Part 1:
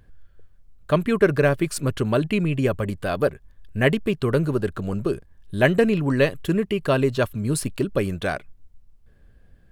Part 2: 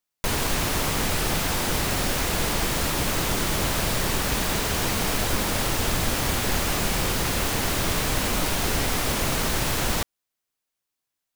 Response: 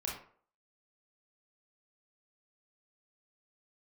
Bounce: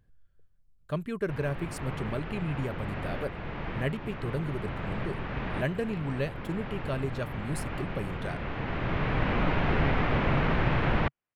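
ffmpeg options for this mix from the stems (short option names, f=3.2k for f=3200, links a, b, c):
-filter_complex "[0:a]volume=-14dB,asplit=2[a][b];[1:a]lowpass=f=2.5k:w=0.5412,lowpass=f=2.5k:w=1.3066,adelay=1050,volume=-0.5dB[c];[b]apad=whole_len=547144[d];[c][d]sidechaincompress=threshold=-41dB:ratio=6:attack=7:release=1480[e];[a][e]amix=inputs=2:normalize=0,equalizer=f=140:t=o:w=0.74:g=6"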